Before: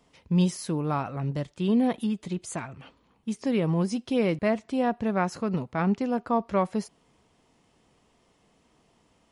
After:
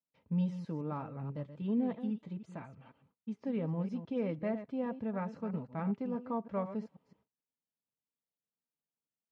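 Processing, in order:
delay that plays each chunk backwards 162 ms, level −11 dB
noise gate −59 dBFS, range −29 dB
high-pass filter 110 Hz
head-to-tape spacing loss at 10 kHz 33 dB
notch comb filter 360 Hz
level −8 dB

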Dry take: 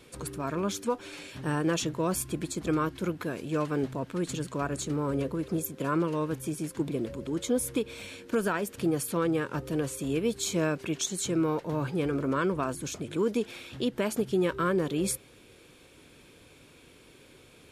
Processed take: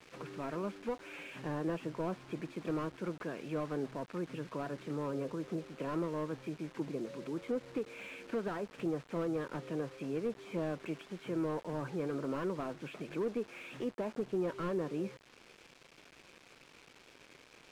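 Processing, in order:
treble cut that deepens with the level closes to 1,500 Hz, closed at −27.5 dBFS
elliptic band-pass filter 140–2,700 Hz, stop band 40 dB
spectral tilt +2 dB per octave
in parallel at −2.5 dB: downward compressor 5 to 1, threshold −44 dBFS, peak gain reduction 17 dB
on the sum: bit-depth reduction 8 bits, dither none
high-frequency loss of the air 54 metres
slew-rate limiting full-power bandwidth 25 Hz
level −5 dB

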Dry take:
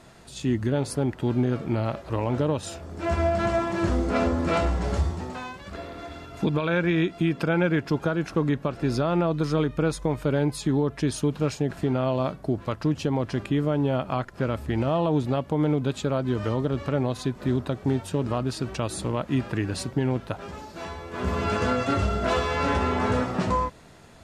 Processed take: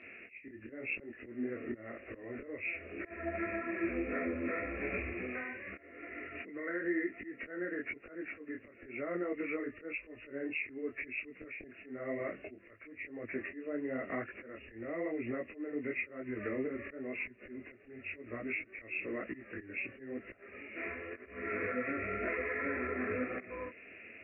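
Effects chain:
hearing-aid frequency compression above 1,700 Hz 4 to 1
high-pass filter 140 Hz 12 dB per octave
volume swells 528 ms
low-pass with resonance 2,500 Hz, resonance Q 2.5
phaser with its sweep stopped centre 370 Hz, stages 4
downward compressor 6 to 1, threshold −31 dBFS, peak gain reduction 10.5 dB
micro pitch shift up and down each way 34 cents
level +1.5 dB

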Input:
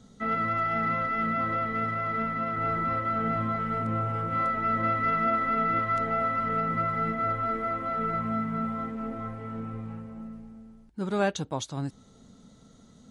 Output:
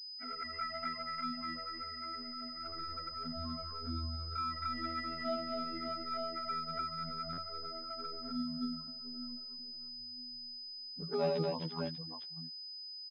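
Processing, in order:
spectral dynamics exaggerated over time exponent 3
phases set to zero 81.9 Hz
multi-tap delay 77/82/84/245/594 ms −17/−5.5/−16/−4/−8 dB
flanger swept by the level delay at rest 10.3 ms, full sweep at −31 dBFS
buffer that repeats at 0:07.32, samples 512, times 4
switching amplifier with a slow clock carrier 5,000 Hz
level +1 dB

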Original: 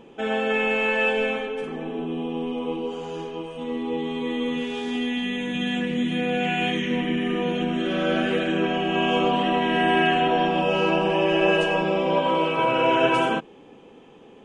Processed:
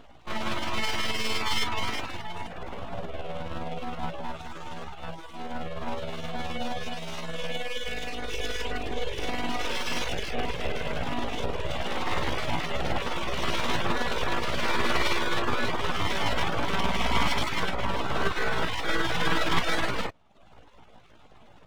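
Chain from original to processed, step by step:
full-wave rectification
time stretch by overlap-add 1.5×, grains 105 ms
reverb reduction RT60 0.61 s

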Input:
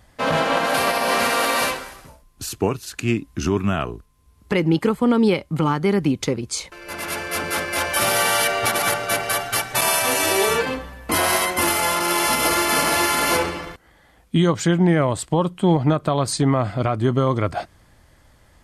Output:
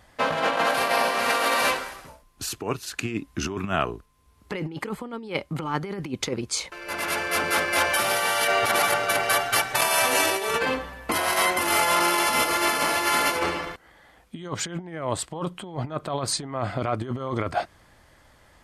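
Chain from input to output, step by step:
high-shelf EQ 4,500 Hz −5.5 dB
compressor whose output falls as the input rises −22 dBFS, ratio −0.5
low-shelf EQ 310 Hz −8.5 dB

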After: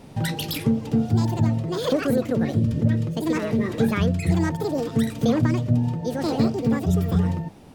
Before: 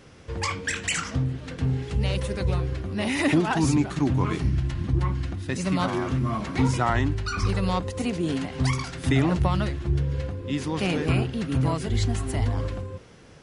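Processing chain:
low-shelf EQ 300 Hz +11.5 dB
speech leveller within 4 dB 2 s
wrong playback speed 45 rpm record played at 78 rpm
level −6 dB

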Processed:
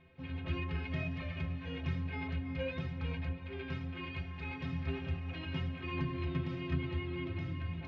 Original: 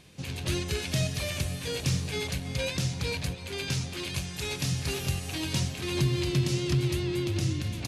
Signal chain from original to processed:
low-pass filter 2,500 Hz 24 dB per octave
mains-hum notches 60/120/180/240/300/360/420/480/540 Hz
stiff-string resonator 78 Hz, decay 0.37 s, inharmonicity 0.03
level +4 dB

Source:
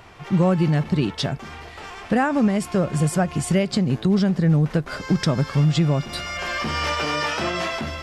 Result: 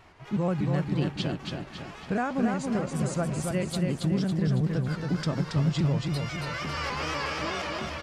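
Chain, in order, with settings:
pitch shifter gated in a rhythm −1.5 semitones, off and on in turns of 121 ms
tape wow and flutter 130 cents
repeating echo 277 ms, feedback 48%, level −4 dB
level −8.5 dB

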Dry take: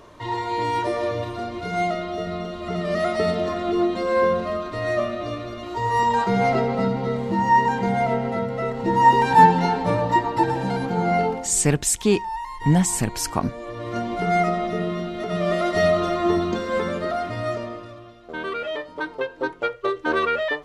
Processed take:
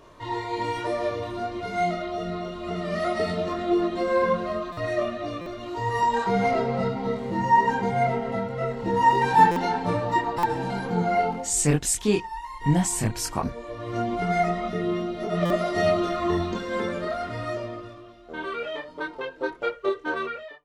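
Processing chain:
fade-out on the ending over 0.87 s
multi-voice chorus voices 6, 0.54 Hz, delay 24 ms, depth 4.5 ms
buffer that repeats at 0:04.72/0:05.41/0:09.51/0:10.38/0:15.45, samples 256, times 8

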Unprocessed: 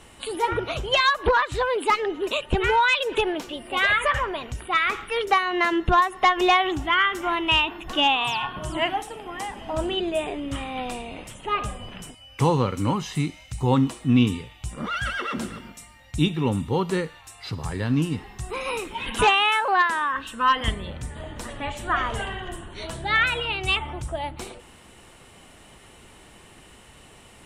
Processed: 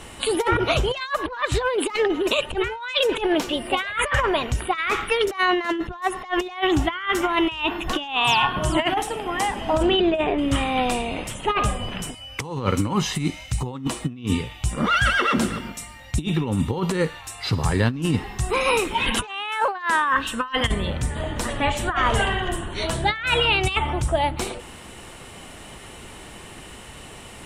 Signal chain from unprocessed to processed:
0:09.82–0:10.37: low-pass filter 4,900 Hz → 2,400 Hz 12 dB per octave
compressor whose output falls as the input rises −26 dBFS, ratio −0.5
level +5 dB

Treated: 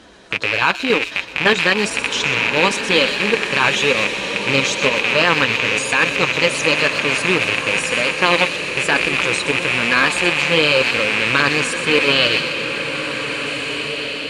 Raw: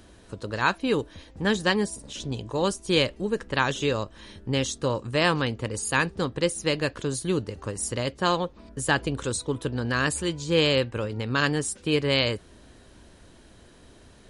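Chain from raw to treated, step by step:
loose part that buzzes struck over −41 dBFS, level −15 dBFS
high-pass filter 110 Hz 6 dB per octave
low-shelf EQ 350 Hz −10 dB
output level in coarse steps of 13 dB
flanger 1 Hz, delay 3.6 ms, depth 3.9 ms, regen −32%
floating-point word with a short mantissa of 2 bits
high-frequency loss of the air 86 metres
delay with a high-pass on its return 123 ms, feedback 47%, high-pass 4,600 Hz, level −8 dB
boost into a limiter +27 dB
slow-attack reverb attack 1,970 ms, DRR 5.5 dB
level −2.5 dB

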